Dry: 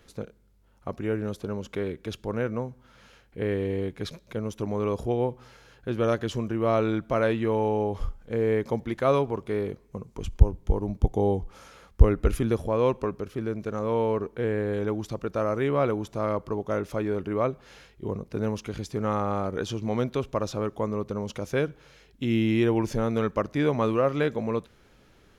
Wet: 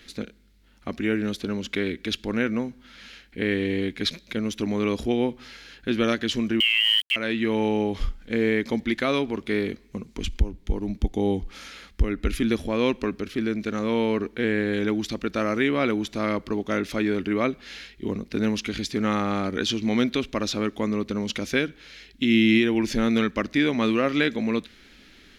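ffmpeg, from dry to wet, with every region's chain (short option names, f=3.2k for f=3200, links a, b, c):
-filter_complex "[0:a]asettb=1/sr,asplit=3[a][b][c];[a]atrim=end=6.604[d];[b]atrim=start=6.6:end=7.16,asetpts=PTS-STARTPTS,afade=t=in:d=0.004:c=qsin,afade=t=out:st=0.556:d=0.004:c=qsin,lowpass=f=2.8k:t=q:w=0.5098,lowpass=f=2.8k:t=q:w=0.6013,lowpass=f=2.8k:t=q:w=0.9,lowpass=f=2.8k:t=q:w=2.563,afreqshift=-3300,bandreject=f=57.21:t=h:w=4,bandreject=f=114.42:t=h:w=4,bandreject=f=171.63:t=h:w=4,bandreject=f=228.84:t=h:w=4,bandreject=f=286.05:t=h:w=4,bandreject=f=343.26:t=h:w=4,bandreject=f=400.47:t=h:w=4,bandreject=f=457.68:t=h:w=4,bandreject=f=514.89:t=h:w=4,bandreject=f=572.1:t=h:w=4,bandreject=f=629.31:t=h:w=4,bandreject=f=686.52:t=h:w=4,bandreject=f=743.73:t=h:w=4,bandreject=f=800.94:t=h:w=4,bandreject=f=858.15:t=h:w=4,bandreject=f=915.36:t=h:w=4,bandreject=f=972.57:t=h:w=4,bandreject=f=1.02978k:t=h:w=4,bandreject=f=1.08699k:t=h:w=4,aeval=exprs='val(0)*gte(abs(val(0)),0.0168)':c=same[e];[c]atrim=start=7.156[f];[d][e]acrossfade=d=0.004:c1=hsin:c2=qsin[g];[g][f]acrossfade=d=0.004:c1=qsin:c2=hsin,equalizer=f=125:t=o:w=1:g=-11,equalizer=f=250:t=o:w=1:g=8,equalizer=f=500:t=o:w=1:g=-6,equalizer=f=1k:t=o:w=1:g=-7,equalizer=f=2k:t=o:w=1:g=8,equalizer=f=4k:t=o:w=1:g=9,alimiter=limit=-15.5dB:level=0:latency=1:release=470,volume=4.5dB"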